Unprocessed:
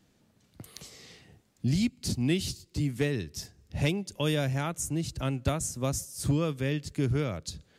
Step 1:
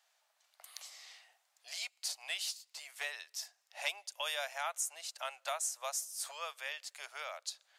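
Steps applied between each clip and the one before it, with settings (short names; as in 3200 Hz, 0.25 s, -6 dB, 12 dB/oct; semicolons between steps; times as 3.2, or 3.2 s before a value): steep high-pass 650 Hz 48 dB/oct; gain -2 dB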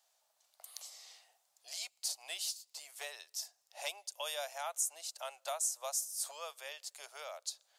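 bell 1900 Hz -12 dB 2 oct; gain +4 dB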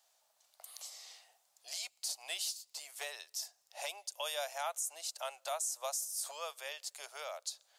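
limiter -29.5 dBFS, peak gain reduction 8 dB; gain +2.5 dB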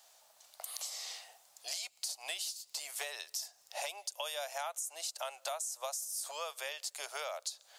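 compressor 6:1, threshold -47 dBFS, peak gain reduction 13 dB; gain +10 dB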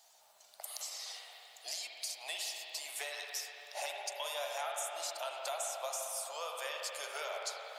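bin magnitudes rounded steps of 15 dB; spring tank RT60 3.8 s, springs 51/56 ms, chirp 45 ms, DRR -0.5 dB; gain -1 dB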